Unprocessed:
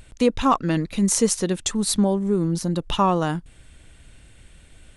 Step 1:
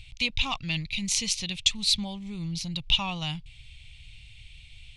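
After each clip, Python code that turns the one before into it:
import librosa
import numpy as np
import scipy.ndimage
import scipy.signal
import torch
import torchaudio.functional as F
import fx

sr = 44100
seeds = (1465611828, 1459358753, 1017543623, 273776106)

y = fx.curve_eq(x, sr, hz=(130.0, 190.0, 430.0, 790.0, 1600.0, 2300.0, 4100.0, 9300.0), db=(0, -13, -28, -12, -20, 8, 7, -12))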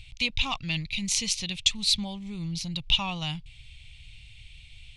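y = x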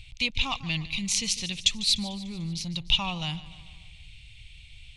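y = fx.echo_feedback(x, sr, ms=148, feedback_pct=57, wet_db=-17.0)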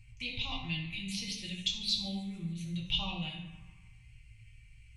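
y = fx.comb_fb(x, sr, f0_hz=260.0, decay_s=0.86, harmonics='all', damping=0.0, mix_pct=70)
y = fx.env_phaser(y, sr, low_hz=580.0, high_hz=1800.0, full_db=-31.0)
y = fx.rev_fdn(y, sr, rt60_s=0.86, lf_ratio=1.05, hf_ratio=0.6, size_ms=51.0, drr_db=-3.5)
y = y * librosa.db_to_amplitude(-1.0)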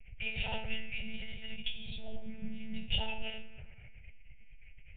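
y = fx.spec_erase(x, sr, start_s=1.56, length_s=0.4, low_hz=250.0, high_hz=1900.0)
y = fx.lpc_monotone(y, sr, seeds[0], pitch_hz=220.0, order=8)
y = fx.fixed_phaser(y, sr, hz=1100.0, stages=6)
y = y * librosa.db_to_amplitude(5.5)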